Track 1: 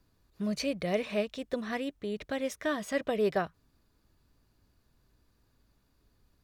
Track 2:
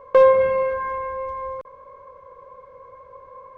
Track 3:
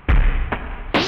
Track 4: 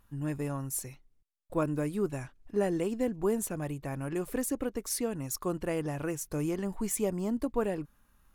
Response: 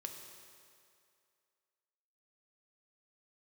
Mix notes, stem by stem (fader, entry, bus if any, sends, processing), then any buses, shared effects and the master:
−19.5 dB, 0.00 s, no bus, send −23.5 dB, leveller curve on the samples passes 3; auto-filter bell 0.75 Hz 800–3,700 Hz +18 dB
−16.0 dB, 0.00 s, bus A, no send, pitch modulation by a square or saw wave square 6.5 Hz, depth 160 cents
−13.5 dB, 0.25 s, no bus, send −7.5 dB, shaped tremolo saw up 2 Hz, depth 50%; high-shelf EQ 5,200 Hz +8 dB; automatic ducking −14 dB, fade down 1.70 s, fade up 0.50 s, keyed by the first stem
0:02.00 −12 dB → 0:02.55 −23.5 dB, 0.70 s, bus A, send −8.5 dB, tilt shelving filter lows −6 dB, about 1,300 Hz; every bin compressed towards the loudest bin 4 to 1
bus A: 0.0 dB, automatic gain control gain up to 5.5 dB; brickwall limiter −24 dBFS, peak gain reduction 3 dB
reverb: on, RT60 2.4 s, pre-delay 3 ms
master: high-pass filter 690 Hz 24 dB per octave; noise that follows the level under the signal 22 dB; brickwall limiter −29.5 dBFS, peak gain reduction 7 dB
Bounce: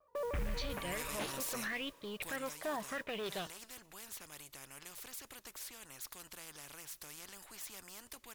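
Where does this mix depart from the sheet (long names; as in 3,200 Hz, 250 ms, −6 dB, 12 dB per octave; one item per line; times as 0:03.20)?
stem 2 −16.0 dB → −27.0 dB
master: missing high-pass filter 690 Hz 24 dB per octave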